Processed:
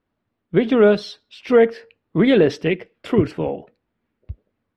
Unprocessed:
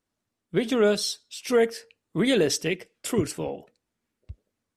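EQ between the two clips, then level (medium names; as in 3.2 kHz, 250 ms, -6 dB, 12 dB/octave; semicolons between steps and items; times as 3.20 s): distance through air 370 m; +8.5 dB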